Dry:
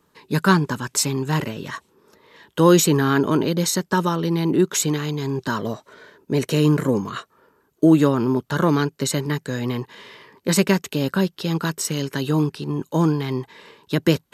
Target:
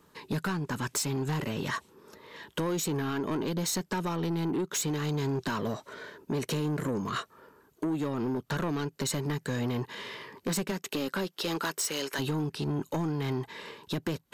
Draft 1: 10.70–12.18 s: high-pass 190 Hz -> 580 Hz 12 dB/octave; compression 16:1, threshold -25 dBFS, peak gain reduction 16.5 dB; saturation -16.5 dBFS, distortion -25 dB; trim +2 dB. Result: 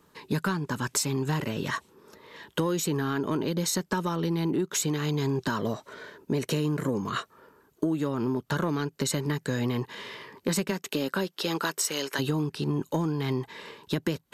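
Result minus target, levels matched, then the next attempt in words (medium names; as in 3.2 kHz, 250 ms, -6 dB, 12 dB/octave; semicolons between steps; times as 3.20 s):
saturation: distortion -13 dB
10.70–12.18 s: high-pass 190 Hz -> 580 Hz 12 dB/octave; compression 16:1, threshold -25 dBFS, peak gain reduction 16.5 dB; saturation -27 dBFS, distortion -12 dB; trim +2 dB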